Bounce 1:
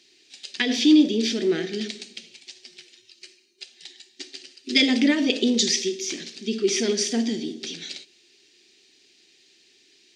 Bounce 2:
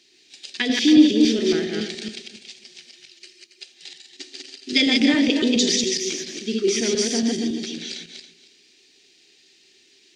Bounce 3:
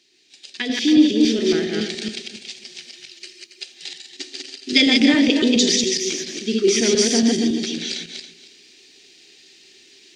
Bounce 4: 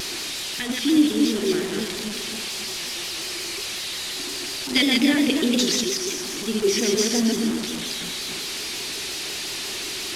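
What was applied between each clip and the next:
feedback delay that plays each chunk backwards 139 ms, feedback 42%, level −2.5 dB
speech leveller within 5 dB 2 s; level +1.5 dB
linear delta modulator 64 kbit/s, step −20 dBFS; pitch modulation by a square or saw wave saw down 5.6 Hz, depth 100 cents; level −4 dB

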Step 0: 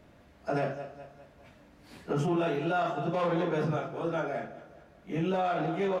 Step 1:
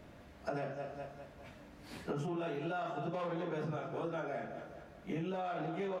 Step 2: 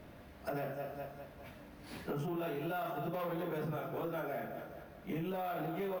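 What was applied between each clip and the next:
downward compressor 6 to 1, threshold −38 dBFS, peak gain reduction 12.5 dB; level +2 dB
soft clipping −31.5 dBFS, distortion −20 dB; bad sample-rate conversion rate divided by 3×, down filtered, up hold; level +1.5 dB

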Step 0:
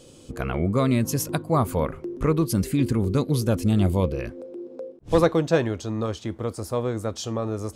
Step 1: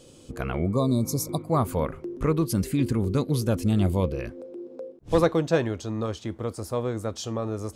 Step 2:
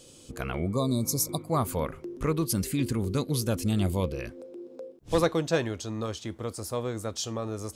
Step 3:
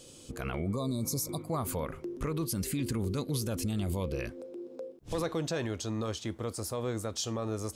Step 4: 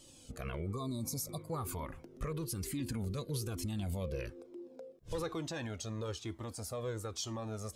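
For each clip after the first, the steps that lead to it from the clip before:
healed spectral selection 0:00.72–0:01.43, 1,200–3,500 Hz before; level −2 dB
high-shelf EQ 2,300 Hz +8.5 dB; level −4 dB
brickwall limiter −23.5 dBFS, peak gain reduction 10.5 dB
flanger whose copies keep moving one way falling 1.1 Hz; level −1 dB

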